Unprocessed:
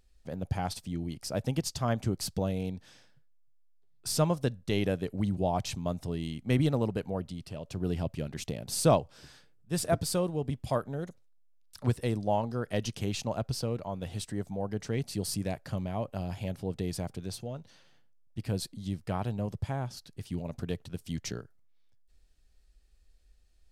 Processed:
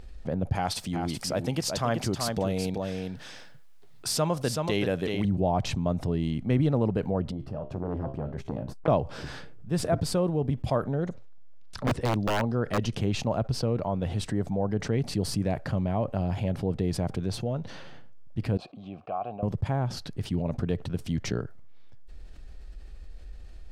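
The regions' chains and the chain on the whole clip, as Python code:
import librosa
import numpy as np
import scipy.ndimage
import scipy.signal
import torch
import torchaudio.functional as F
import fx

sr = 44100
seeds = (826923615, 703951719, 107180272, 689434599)

y = fx.chain(x, sr, fx.tilt_eq(slope=2.5),
    fx.echo_single(ms=379, db=-8.0), at=(0.55, 5.25))
y = fx.chain(y, sr, fx.band_shelf(hz=5000.0, db=-11.5, octaves=2.9),
    fx.comb_fb(f0_hz=67.0, decay_s=0.32, harmonics='all', damping=0.0, mix_pct=70),
    fx.transformer_sat(knee_hz=1400.0), at=(7.31, 8.88))
y = fx.chain(y, sr, fx.lowpass(hz=8000.0, slope=12),
    fx.overflow_wrap(gain_db=22.0), at=(10.91, 12.78))
y = fx.chain(y, sr, fx.vowel_filter(vowel='a'),
    fx.bass_treble(bass_db=1, treble_db=-5), at=(18.57, 19.43))
y = fx.lowpass(y, sr, hz=1500.0, slope=6)
y = fx.env_flatten(y, sr, amount_pct=50)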